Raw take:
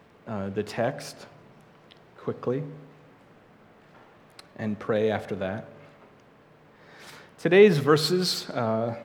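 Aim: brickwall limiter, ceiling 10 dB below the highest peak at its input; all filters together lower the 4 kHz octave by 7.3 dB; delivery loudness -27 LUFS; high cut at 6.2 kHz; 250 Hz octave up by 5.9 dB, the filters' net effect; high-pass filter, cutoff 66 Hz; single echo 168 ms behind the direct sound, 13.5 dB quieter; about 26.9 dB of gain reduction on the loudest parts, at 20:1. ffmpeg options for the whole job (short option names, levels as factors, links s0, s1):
-af "highpass=66,lowpass=6200,equalizer=f=250:t=o:g=8.5,equalizer=f=4000:t=o:g=-7.5,acompressor=threshold=0.02:ratio=20,alimiter=level_in=2.37:limit=0.0631:level=0:latency=1,volume=0.422,aecho=1:1:168:0.211,volume=7.08"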